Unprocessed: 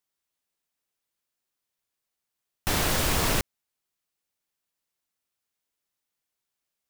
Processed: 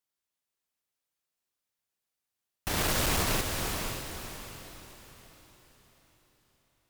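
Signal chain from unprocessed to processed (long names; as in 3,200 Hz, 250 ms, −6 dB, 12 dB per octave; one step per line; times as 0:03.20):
0:02.78–0:03.23: leveller curve on the samples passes 1
asymmetric clip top −23 dBFS
feedback delay with all-pass diffusion 540 ms, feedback 40%, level −5 dB
level −4 dB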